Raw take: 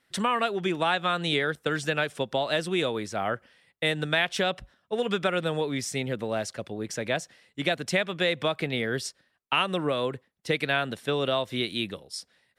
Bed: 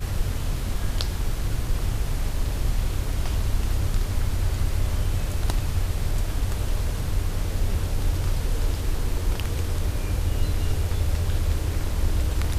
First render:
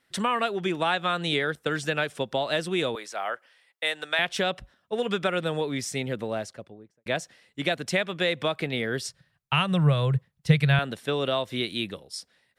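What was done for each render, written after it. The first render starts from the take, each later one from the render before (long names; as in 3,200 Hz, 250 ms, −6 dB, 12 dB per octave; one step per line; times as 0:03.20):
0:02.95–0:04.19: high-pass filter 630 Hz
0:06.17–0:07.06: fade out and dull
0:09.07–0:10.79: low shelf with overshoot 200 Hz +11 dB, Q 3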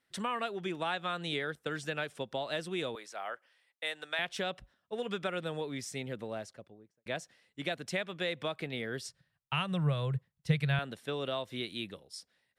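level −9 dB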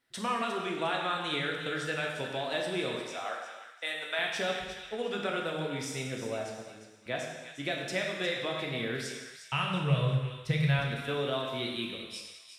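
delay with a high-pass on its return 355 ms, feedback 31%, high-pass 1,500 Hz, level −9.5 dB
reverb whose tail is shaped and stops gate 410 ms falling, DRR −1 dB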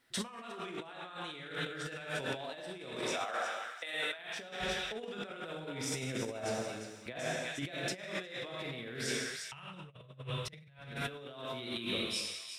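compressor whose output falls as the input rises −39 dBFS, ratio −0.5
transient designer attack −3 dB, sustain +2 dB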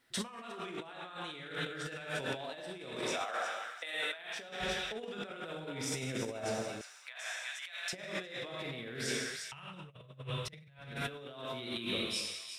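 0:03.22–0:04.49: high-pass filter 270 Hz 6 dB per octave
0:06.81–0:07.93: high-pass filter 980 Hz 24 dB per octave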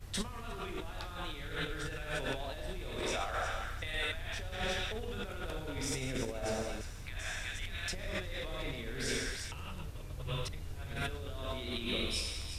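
mix in bed −19.5 dB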